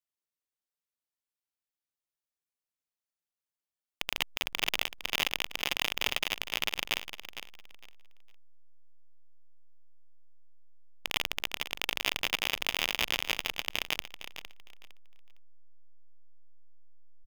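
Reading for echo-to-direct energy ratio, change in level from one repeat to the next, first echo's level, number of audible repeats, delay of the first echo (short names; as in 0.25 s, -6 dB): -11.5 dB, -13.0 dB, -11.5 dB, 2, 0.458 s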